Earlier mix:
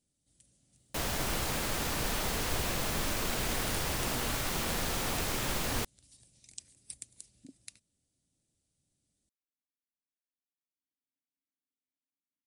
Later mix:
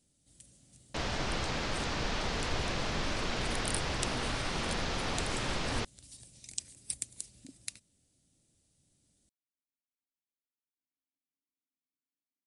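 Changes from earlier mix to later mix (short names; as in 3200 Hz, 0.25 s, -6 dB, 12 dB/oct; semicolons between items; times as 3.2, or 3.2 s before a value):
first sound +8.0 dB; second sound: add LPF 5700 Hz 24 dB/oct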